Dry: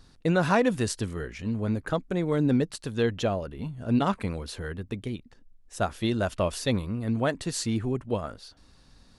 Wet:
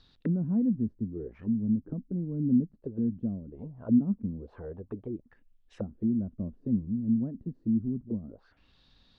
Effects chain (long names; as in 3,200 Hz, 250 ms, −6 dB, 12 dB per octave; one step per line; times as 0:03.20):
envelope-controlled low-pass 230–4,300 Hz down, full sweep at −27 dBFS
level −8.5 dB